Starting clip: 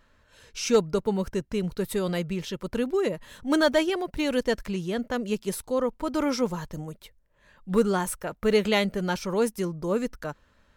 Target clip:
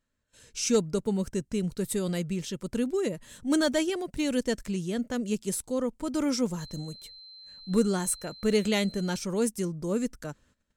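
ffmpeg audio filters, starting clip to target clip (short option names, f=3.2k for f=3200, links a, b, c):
-filter_complex "[0:a]agate=range=-15dB:threshold=-57dB:ratio=16:detection=peak,equalizer=f=125:t=o:w=1:g=4,equalizer=f=250:t=o:w=1:g=5,equalizer=f=1k:t=o:w=1:g=-4,equalizer=f=8k:t=o:w=1:g=12,asettb=1/sr,asplit=3[a][b][c];[a]atrim=end=6.604[d];[b]atrim=start=6.6:end=9.17,asetpts=PTS-STARTPTS,afade=t=in:d=0.004:c=qsin,afade=t=out:st=2.566:d=0.004:c=qsin,aeval=exprs='val(0)+0.00891*sin(2*PI*4100*n/s)':c=same[e];[c]atrim=start=9.166[f];[d][e]acrossfade=d=0.004:c1=hsin:c2=qsin[g];[g][f]acrossfade=d=0.004:c1=qsin:c2=hsin,volume=-5dB"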